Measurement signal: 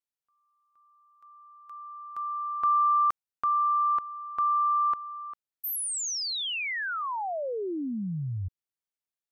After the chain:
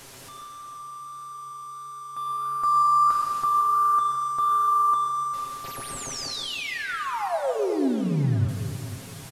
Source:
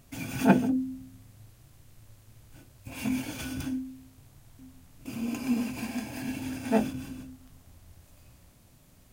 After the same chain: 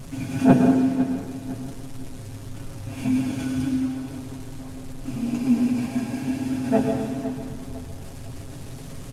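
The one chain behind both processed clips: one-bit delta coder 64 kbps, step -37 dBFS; flange 1.5 Hz, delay 4.2 ms, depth 7.3 ms, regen +82%; tilt shelf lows +5 dB, about 870 Hz; comb 7.4 ms, depth 53%; feedback delay 505 ms, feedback 37%, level -13.5 dB; plate-style reverb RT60 1.3 s, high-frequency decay 1×, pre-delay 95 ms, DRR 3.5 dB; trim +5.5 dB

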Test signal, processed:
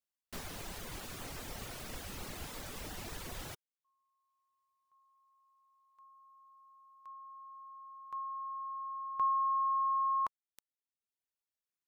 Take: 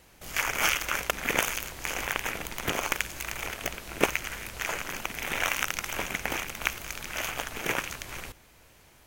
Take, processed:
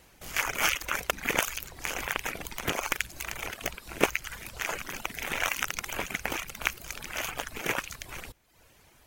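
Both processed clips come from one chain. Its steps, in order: reverb removal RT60 0.75 s

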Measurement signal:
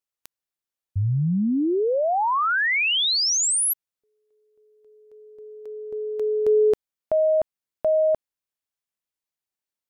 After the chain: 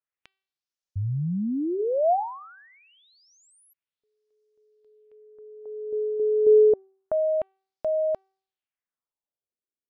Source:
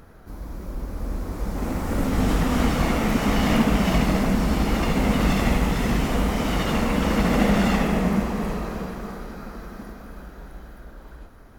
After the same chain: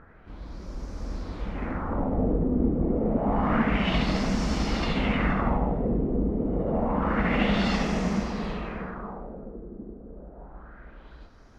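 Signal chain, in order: LFO low-pass sine 0.28 Hz 380–5900 Hz; de-hum 384.6 Hz, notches 13; trim -5 dB

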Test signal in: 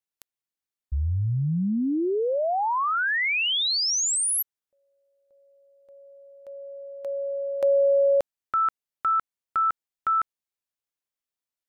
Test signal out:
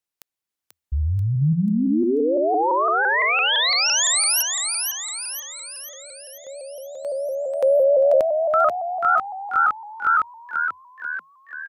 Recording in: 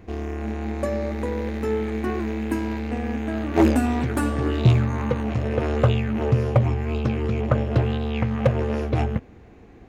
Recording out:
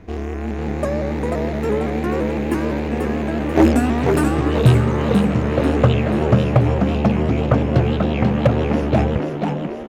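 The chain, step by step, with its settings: on a send: frequency-shifting echo 488 ms, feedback 53%, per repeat +77 Hz, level -5 dB; on the sum: vibrato with a chosen wave saw up 5.9 Hz, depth 100 cents; trim +3.5 dB

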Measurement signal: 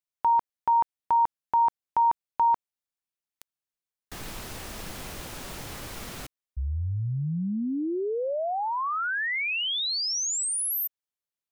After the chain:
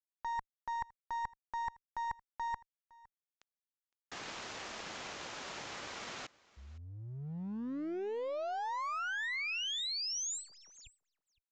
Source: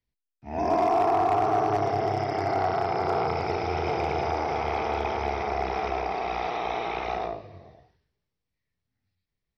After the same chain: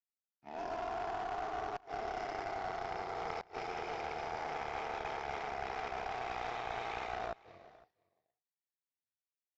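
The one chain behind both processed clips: high-pass 750 Hz 6 dB/octave; treble shelf 3.6 kHz -6 dB; reverse; compression 16:1, threshold -36 dBFS; reverse; inverted gate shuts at -28 dBFS, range -30 dB; one-sided clip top -40 dBFS; power-law waveshaper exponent 1.4; on a send: delay 511 ms -23 dB; on the sum: resampled via 16 kHz; trim +5.5 dB

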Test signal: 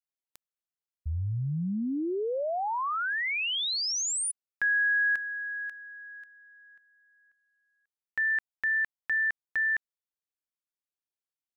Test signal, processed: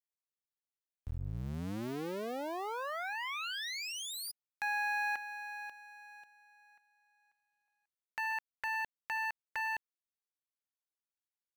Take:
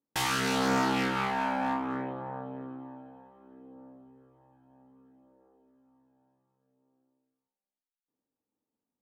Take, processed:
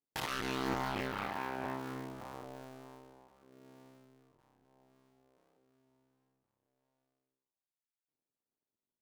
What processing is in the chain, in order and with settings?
cycle switcher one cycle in 2, muted; dynamic bell 7.6 kHz, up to -6 dB, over -53 dBFS, Q 1.1; trim -5.5 dB

